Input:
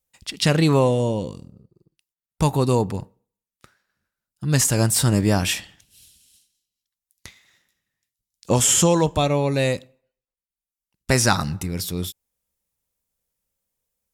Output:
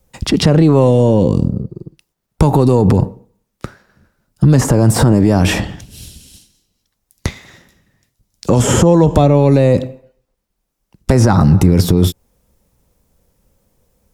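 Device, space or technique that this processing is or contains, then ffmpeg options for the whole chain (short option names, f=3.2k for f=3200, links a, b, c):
mastering chain: -filter_complex "[0:a]equalizer=f=5.4k:t=o:w=0.77:g=3,acrossover=split=230|1600[a][b][c];[a]acompressor=threshold=-30dB:ratio=4[d];[b]acompressor=threshold=-24dB:ratio=4[e];[c]acompressor=threshold=-34dB:ratio=4[f];[d][e][f]amix=inputs=3:normalize=0,acompressor=threshold=-24dB:ratio=6,asoftclip=type=tanh:threshold=-15.5dB,tiltshelf=f=1.2k:g=8.5,alimiter=level_in=21.5dB:limit=-1dB:release=50:level=0:latency=1,volume=-1dB"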